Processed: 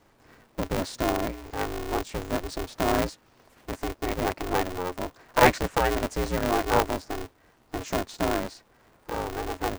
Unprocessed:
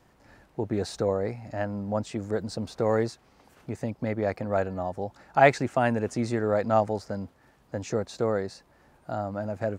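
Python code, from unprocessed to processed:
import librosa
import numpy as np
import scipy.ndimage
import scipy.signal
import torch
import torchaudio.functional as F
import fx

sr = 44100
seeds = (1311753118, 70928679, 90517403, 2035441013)

y = x * np.sign(np.sin(2.0 * np.pi * 180.0 * np.arange(len(x)) / sr))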